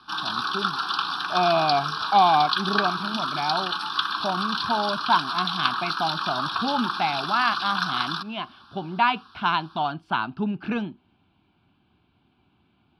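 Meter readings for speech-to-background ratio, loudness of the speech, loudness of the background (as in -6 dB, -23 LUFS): 0.5 dB, -26.0 LUFS, -26.5 LUFS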